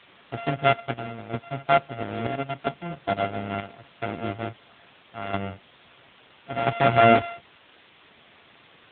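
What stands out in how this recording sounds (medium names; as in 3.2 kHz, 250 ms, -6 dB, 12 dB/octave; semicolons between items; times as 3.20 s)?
a buzz of ramps at a fixed pitch in blocks of 64 samples; chopped level 0.75 Hz, depth 65%, duty 70%; a quantiser's noise floor 8-bit, dither triangular; AMR-NB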